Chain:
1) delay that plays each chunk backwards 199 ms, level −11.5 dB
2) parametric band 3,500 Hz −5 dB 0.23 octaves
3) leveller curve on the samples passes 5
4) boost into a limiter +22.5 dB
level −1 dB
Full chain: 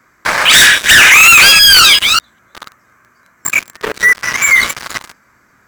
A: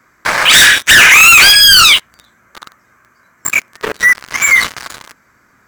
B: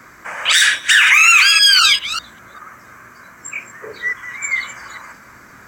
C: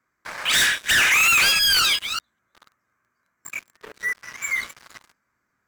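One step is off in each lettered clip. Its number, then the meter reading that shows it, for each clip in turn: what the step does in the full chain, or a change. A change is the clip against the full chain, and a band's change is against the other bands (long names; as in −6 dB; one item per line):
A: 1, change in momentary loudness spread −2 LU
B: 3, change in crest factor +6.5 dB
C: 4, change in momentary loudness spread +4 LU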